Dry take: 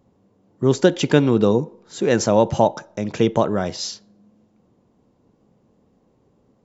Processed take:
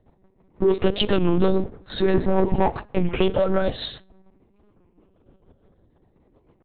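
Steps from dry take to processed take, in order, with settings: moving spectral ripple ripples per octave 0.79, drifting +0.5 Hz, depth 10 dB; rotary speaker horn 6.7 Hz; in parallel at -2 dB: limiter -13.5 dBFS, peak gain reduction 11.5 dB; 2.14–2.77 on the sum: tilt shelf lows +7 dB, about 1100 Hz; compressor 2:1, threshold -29 dBFS, peak gain reduction 13 dB; sample leveller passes 2; on a send at -20 dB: reverb RT60 0.50 s, pre-delay 9 ms; on the sum: monotone LPC vocoder at 8 kHz 190 Hz; record warp 33 1/3 rpm, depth 160 cents

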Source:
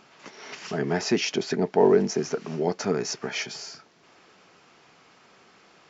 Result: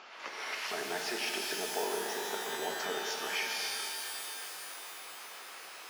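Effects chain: compressor 2.5:1, threshold -42 dBFS, peak gain reduction 18 dB; BPF 600–4500 Hz; shimmer reverb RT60 3.3 s, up +12 st, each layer -2 dB, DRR 1 dB; gain +5.5 dB

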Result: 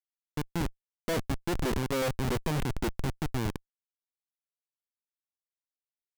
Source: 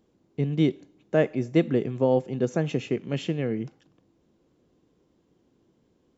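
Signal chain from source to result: Doppler pass-by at 2.21, 18 m/s, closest 7.5 m; Schmitt trigger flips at -33 dBFS; gain +4.5 dB

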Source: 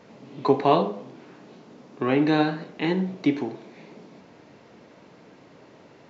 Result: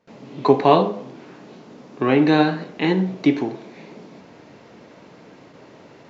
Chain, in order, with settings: gate with hold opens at -42 dBFS; gain +5 dB

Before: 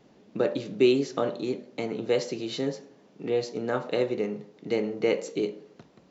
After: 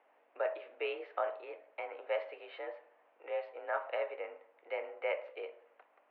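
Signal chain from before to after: hum 50 Hz, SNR 14 dB; mistuned SSB +51 Hz 570–2500 Hz; gain -3.5 dB

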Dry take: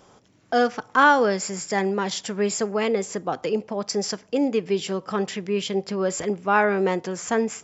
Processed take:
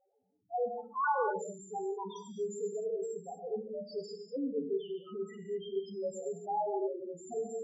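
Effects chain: low shelf 210 Hz -5 dB; loudest bins only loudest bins 1; non-linear reverb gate 0.27 s flat, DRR 2.5 dB; gain -6 dB

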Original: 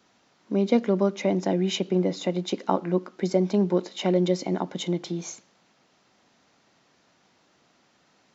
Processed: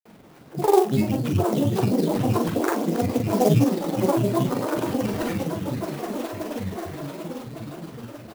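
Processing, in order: tilt shelf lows +7 dB, about 770 Hz; in parallel at 0 dB: negative-ratio compressor -42 dBFS, ratio -1; on the sum: chorus 0.38 Hz, delay 17 ms, depth 7.4 ms; on a send: swelling echo 0.119 s, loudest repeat 8, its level -15 dB; on the sum: decimation with a swept rate 8×, swing 60% 3.4 Hz; grains, grains 19/s, pitch spread up and down by 12 st; doubler 42 ms -6 dB; clock jitter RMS 0.027 ms

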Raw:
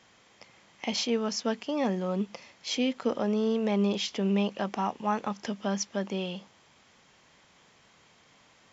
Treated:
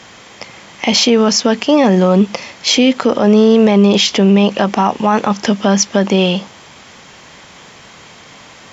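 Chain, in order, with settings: added harmonics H 7 -41 dB, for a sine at -14.5 dBFS; maximiser +23 dB; gain -1 dB

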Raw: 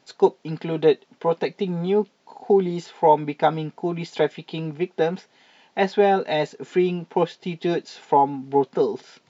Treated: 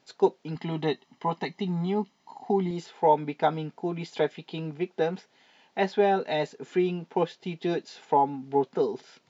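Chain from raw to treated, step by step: 0.55–2.71 comb 1 ms, depth 68%; gain -5 dB

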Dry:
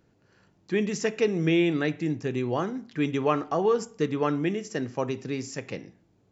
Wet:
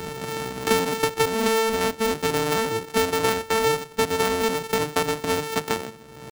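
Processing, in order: sample sorter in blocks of 128 samples; pitch shift +4.5 st; three-band squash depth 100%; gain +3 dB

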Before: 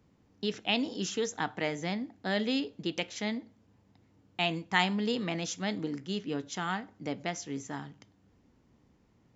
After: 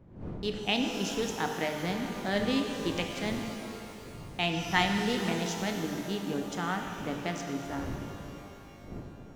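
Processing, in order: Wiener smoothing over 9 samples; wind noise 240 Hz -47 dBFS; shimmer reverb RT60 2.9 s, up +12 st, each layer -8 dB, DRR 3.5 dB

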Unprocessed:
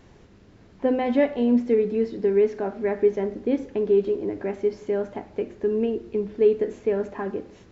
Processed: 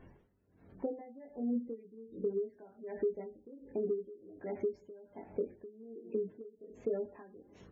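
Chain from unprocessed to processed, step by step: 0.86–1.42 high shelf 2100 Hz -11.5 dB; 5.94–6.56 HPF 240 Hz -> 66 Hz 24 dB/oct; doubler 22 ms -3 dB; spectral gate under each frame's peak -25 dB strong; compressor 6:1, threshold -25 dBFS, peak gain reduction 14 dB; 3.78–4.33 bell 1400 Hz +6 dB 0.9 oct; dB-linear tremolo 1.3 Hz, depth 20 dB; gain -5.5 dB

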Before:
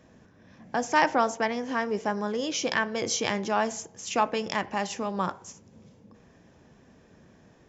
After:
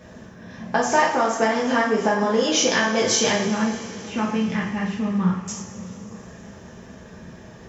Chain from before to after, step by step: 3.44–5.48 EQ curve 190 Hz 0 dB, 640 Hz -20 dB, 2200 Hz -10 dB, 6400 Hz -27 dB; compressor 6:1, threshold -30 dBFS, peak gain reduction 12.5 dB; two-slope reverb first 0.55 s, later 4.6 s, from -18 dB, DRR -5 dB; gain +8 dB

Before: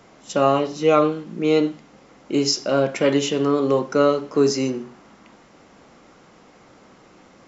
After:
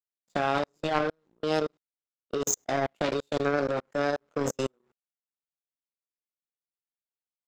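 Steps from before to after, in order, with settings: level quantiser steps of 22 dB; formant shift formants +4 st; power-law curve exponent 2; gain +2.5 dB

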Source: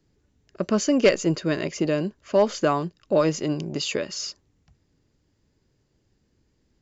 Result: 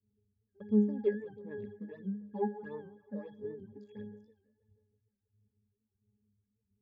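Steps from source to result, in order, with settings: Wiener smoothing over 41 samples; octave resonator G#, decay 0.45 s; on a send: tape echo 0.162 s, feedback 61%, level -19 dB, low-pass 5100 Hz; on the sum: phaser stages 8, 1.5 Hz, lowest notch 110–4600 Hz; record warp 78 rpm, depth 100 cents; gain +4.5 dB

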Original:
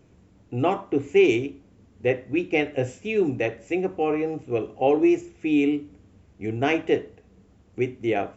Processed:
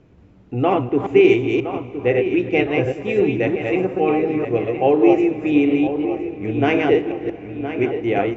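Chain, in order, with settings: reverse delay 0.178 s, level -3 dB; air absorption 160 m; darkening echo 1.015 s, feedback 59%, low-pass 3400 Hz, level -10 dB; plate-style reverb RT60 4.5 s, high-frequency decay 0.8×, DRR 16.5 dB; gain +4.5 dB

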